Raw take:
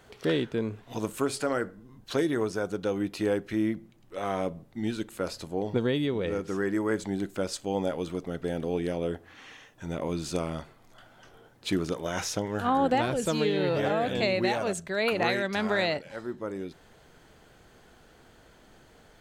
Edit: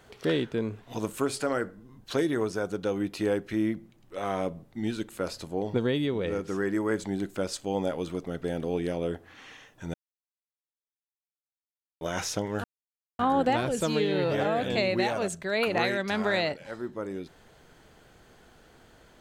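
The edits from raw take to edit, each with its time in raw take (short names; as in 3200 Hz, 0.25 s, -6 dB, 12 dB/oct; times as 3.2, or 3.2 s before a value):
9.94–12.01 mute
12.64 insert silence 0.55 s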